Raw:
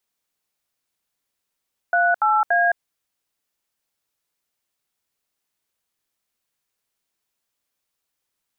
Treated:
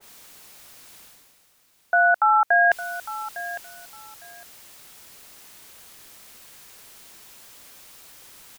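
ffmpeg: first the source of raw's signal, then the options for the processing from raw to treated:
-f lavfi -i "aevalsrc='0.133*clip(min(mod(t,0.287),0.214-mod(t,0.287))/0.002,0,1)*(eq(floor(t/0.287),0)*(sin(2*PI*697*mod(t,0.287))+sin(2*PI*1477*mod(t,0.287)))+eq(floor(t/0.287),1)*(sin(2*PI*852*mod(t,0.287))+sin(2*PI*1336*mod(t,0.287)))+eq(floor(t/0.287),2)*(sin(2*PI*697*mod(t,0.287))+sin(2*PI*1633*mod(t,0.287))))':d=0.861:s=44100"
-af "areverse,acompressor=mode=upward:threshold=0.0794:ratio=2.5,areverse,aecho=1:1:856|1712:0.188|0.0358,adynamicequalizer=threshold=0.02:dfrequency=1700:dqfactor=0.7:tfrequency=1700:tqfactor=0.7:attack=5:release=100:ratio=0.375:range=2:mode=boostabove:tftype=highshelf"

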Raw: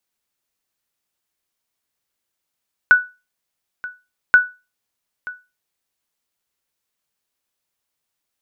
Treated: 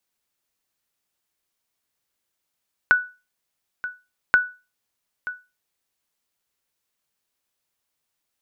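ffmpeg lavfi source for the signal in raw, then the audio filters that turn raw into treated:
-f lavfi -i "aevalsrc='0.75*(sin(2*PI*1480*mod(t,1.43))*exp(-6.91*mod(t,1.43)/0.27)+0.106*sin(2*PI*1480*max(mod(t,1.43)-0.93,0))*exp(-6.91*max(mod(t,1.43)-0.93,0)/0.27))':d=2.86:s=44100"
-af "acompressor=threshold=0.158:ratio=3"

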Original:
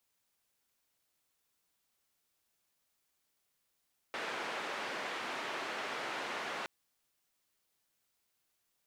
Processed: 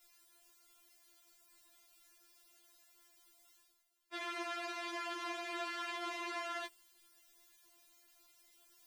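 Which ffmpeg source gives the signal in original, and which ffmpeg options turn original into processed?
-f lavfi -i "anoisesrc=c=white:d=2.52:r=44100:seed=1,highpass=f=320,lowpass=f=2000,volume=-24dB"
-af "areverse,acompressor=mode=upward:threshold=0.00316:ratio=2.5,areverse,afftfilt=real='re*4*eq(mod(b,16),0)':imag='im*4*eq(mod(b,16),0)':win_size=2048:overlap=0.75"

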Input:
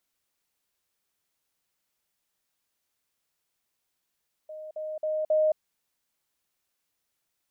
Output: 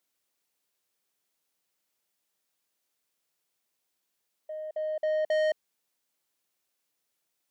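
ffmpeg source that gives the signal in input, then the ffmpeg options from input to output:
-f lavfi -i "aevalsrc='pow(10,(-37.5+6*floor(t/0.27))/20)*sin(2*PI*620*t)*clip(min(mod(t,0.27),0.22-mod(t,0.27))/0.005,0,1)':d=1.08:s=44100"
-filter_complex "[0:a]asplit=2[s0][s1];[s1]adynamicsmooth=sensitivity=4.5:basefreq=720,volume=1.33[s2];[s0][s2]amix=inputs=2:normalize=0,highpass=f=520:p=1,asoftclip=type=tanh:threshold=0.0631"

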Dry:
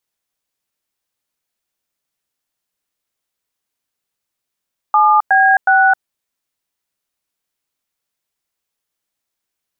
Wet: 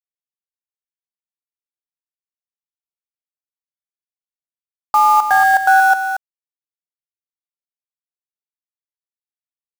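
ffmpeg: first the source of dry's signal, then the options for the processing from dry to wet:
-f lavfi -i "aevalsrc='0.299*clip(min(mod(t,0.366),0.264-mod(t,0.366))/0.002,0,1)*(eq(floor(t/0.366),0)*(sin(2*PI*852*mod(t,0.366))+sin(2*PI*1209*mod(t,0.366)))+eq(floor(t/0.366),1)*(sin(2*PI*770*mod(t,0.366))+sin(2*PI*1633*mod(t,0.366)))+eq(floor(t/0.366),2)*(sin(2*PI*770*mod(t,0.366))+sin(2*PI*1477*mod(t,0.366))))':d=1.098:s=44100"
-af "lowpass=1600,acrusher=bits=3:mix=0:aa=0.5,aecho=1:1:231:0.376"

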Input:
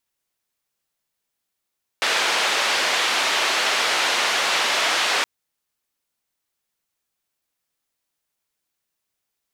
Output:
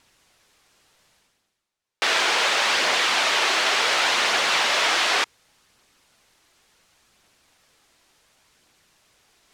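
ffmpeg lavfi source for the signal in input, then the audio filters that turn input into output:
-f lavfi -i "anoisesrc=c=white:d=3.22:r=44100:seed=1,highpass=f=510,lowpass=f=3600,volume=-8dB"
-af "areverse,acompressor=mode=upward:threshold=0.0141:ratio=2.5,areverse,aphaser=in_gain=1:out_gain=1:delay=3.1:decay=0.21:speed=0.69:type=triangular,adynamicsmooth=sensitivity=3.5:basefreq=7800"

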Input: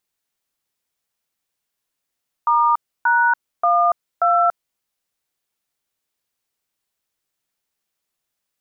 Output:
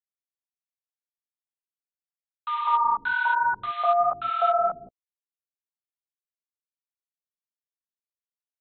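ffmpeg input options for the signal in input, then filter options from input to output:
-f lavfi -i "aevalsrc='0.168*clip(min(mod(t,0.582),0.285-mod(t,0.582))/0.002,0,1)*(eq(floor(t/0.582),0)*(sin(2*PI*941*mod(t,0.582))+sin(2*PI*1209*mod(t,0.582)))+eq(floor(t/0.582),1)*(sin(2*PI*941*mod(t,0.582))+sin(2*PI*1477*mod(t,0.582)))+eq(floor(t/0.582),2)*(sin(2*PI*697*mod(t,0.582))+sin(2*PI*1209*mod(t,0.582)))+eq(floor(t/0.582),3)*(sin(2*PI*697*mod(t,0.582))+sin(2*PI*1336*mod(t,0.582))))':d=2.328:s=44100"
-filter_complex "[0:a]aresample=8000,acrusher=bits=4:mix=0:aa=0.5,aresample=44100,flanger=delay=8.1:depth=8:regen=3:speed=1.2:shape=sinusoidal,acrossover=split=370|1300[s0][s1][s2];[s1]adelay=200[s3];[s0]adelay=370[s4];[s4][s3][s2]amix=inputs=3:normalize=0"

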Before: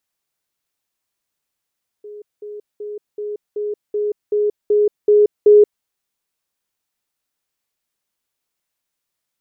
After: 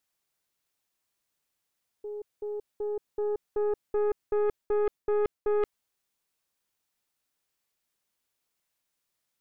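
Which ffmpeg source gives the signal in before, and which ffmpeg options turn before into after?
-f lavfi -i "aevalsrc='pow(10,(-32+3*floor(t/0.38))/20)*sin(2*PI*417*t)*clip(min(mod(t,0.38),0.18-mod(t,0.38))/0.005,0,1)':d=3.8:s=44100"
-af "areverse,acompressor=threshold=0.112:ratio=16,areverse,aeval=exprs='(tanh(14.1*val(0)+0.45)-tanh(0.45))/14.1':c=same"

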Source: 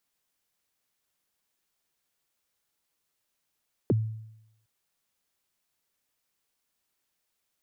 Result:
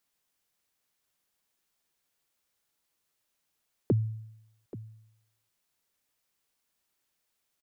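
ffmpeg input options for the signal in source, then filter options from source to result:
-f lavfi -i "aevalsrc='0.126*pow(10,-3*t/0.83)*sin(2*PI*(500*0.027/log(110/500)*(exp(log(110/500)*min(t,0.027)/0.027)-1)+110*max(t-0.027,0)))':d=0.76:s=44100"
-af "aecho=1:1:831:0.15"

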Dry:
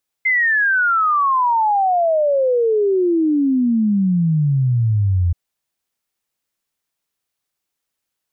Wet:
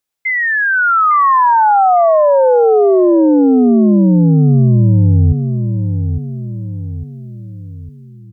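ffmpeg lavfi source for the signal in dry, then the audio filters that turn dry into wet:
-f lavfi -i "aevalsrc='0.224*clip(min(t,5.08-t)/0.01,0,1)*sin(2*PI*2100*5.08/log(84/2100)*(exp(log(84/2100)*t/5.08)-1))':d=5.08:s=44100"
-filter_complex "[0:a]dynaudnorm=f=330:g=5:m=2.11,asplit=2[s0][s1];[s1]adelay=855,lowpass=f=830:p=1,volume=0.447,asplit=2[s2][s3];[s3]adelay=855,lowpass=f=830:p=1,volume=0.47,asplit=2[s4][s5];[s5]adelay=855,lowpass=f=830:p=1,volume=0.47,asplit=2[s6][s7];[s7]adelay=855,lowpass=f=830:p=1,volume=0.47,asplit=2[s8][s9];[s9]adelay=855,lowpass=f=830:p=1,volume=0.47,asplit=2[s10][s11];[s11]adelay=855,lowpass=f=830:p=1,volume=0.47[s12];[s0][s2][s4][s6][s8][s10][s12]amix=inputs=7:normalize=0"

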